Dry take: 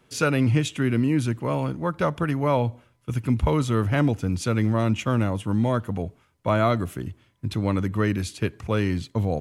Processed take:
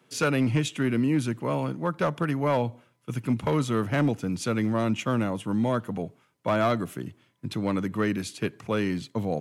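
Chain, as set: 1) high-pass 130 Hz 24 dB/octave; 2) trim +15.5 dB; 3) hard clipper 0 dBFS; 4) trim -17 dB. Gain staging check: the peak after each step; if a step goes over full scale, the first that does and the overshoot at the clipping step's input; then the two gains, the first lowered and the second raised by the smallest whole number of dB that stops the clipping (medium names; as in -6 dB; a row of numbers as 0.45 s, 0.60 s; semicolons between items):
-9.0 dBFS, +6.5 dBFS, 0.0 dBFS, -17.0 dBFS; step 2, 6.5 dB; step 2 +8.5 dB, step 4 -10 dB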